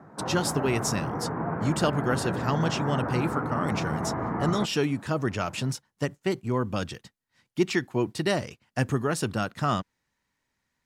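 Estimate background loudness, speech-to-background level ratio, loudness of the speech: -31.5 LUFS, 2.5 dB, -29.0 LUFS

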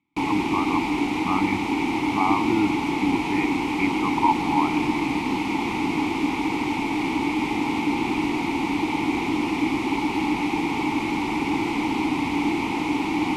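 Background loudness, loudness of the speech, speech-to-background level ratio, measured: -24.5 LUFS, -27.0 LUFS, -2.5 dB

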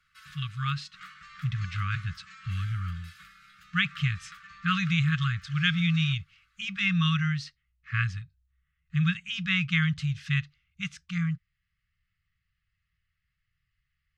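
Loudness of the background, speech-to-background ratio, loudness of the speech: -49.0 LUFS, 20.0 dB, -29.0 LUFS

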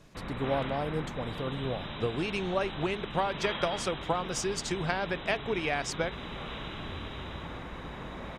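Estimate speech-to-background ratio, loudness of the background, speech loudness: 6.5 dB, -39.0 LUFS, -32.5 LUFS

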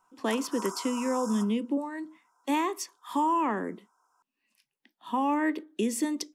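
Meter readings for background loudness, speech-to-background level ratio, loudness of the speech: -40.0 LUFS, 10.5 dB, -29.5 LUFS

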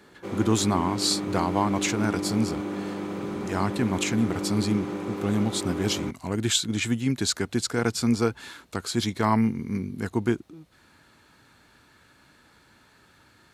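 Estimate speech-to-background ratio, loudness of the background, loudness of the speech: 5.5 dB, -32.0 LUFS, -26.5 LUFS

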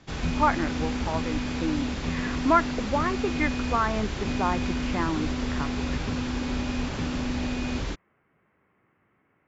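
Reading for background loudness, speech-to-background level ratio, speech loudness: -30.0 LUFS, 1.0 dB, -29.0 LUFS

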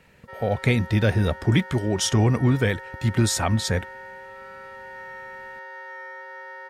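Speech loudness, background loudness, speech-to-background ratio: -22.5 LUFS, -39.0 LUFS, 16.5 dB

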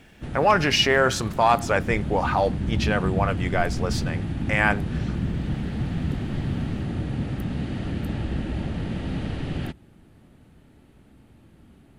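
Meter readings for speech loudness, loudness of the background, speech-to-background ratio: -23.0 LUFS, -29.0 LUFS, 6.0 dB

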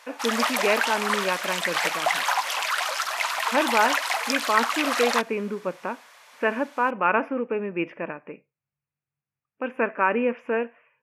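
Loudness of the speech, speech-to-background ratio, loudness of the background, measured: -26.5 LUFS, -1.5 dB, -25.0 LUFS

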